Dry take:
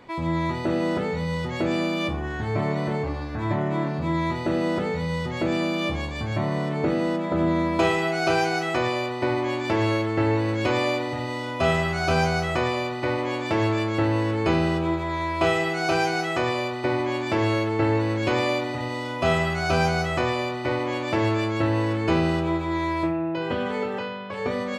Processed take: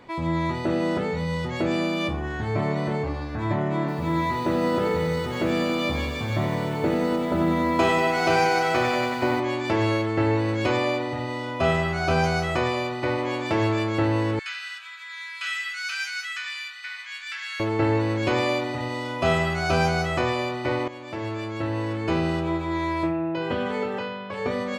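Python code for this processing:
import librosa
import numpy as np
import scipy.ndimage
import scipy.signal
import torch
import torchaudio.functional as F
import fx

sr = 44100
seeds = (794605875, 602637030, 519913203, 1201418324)

y = fx.echo_crushed(x, sr, ms=93, feedback_pct=80, bits=8, wet_db=-8.0, at=(3.79, 9.4))
y = fx.high_shelf(y, sr, hz=4000.0, db=-5.0, at=(10.76, 12.24))
y = fx.ellip_highpass(y, sr, hz=1500.0, order=4, stop_db=80, at=(14.39, 17.6))
y = fx.edit(y, sr, fx.fade_in_from(start_s=20.88, length_s=2.68, curve='qsin', floor_db=-13.0), tone=tone)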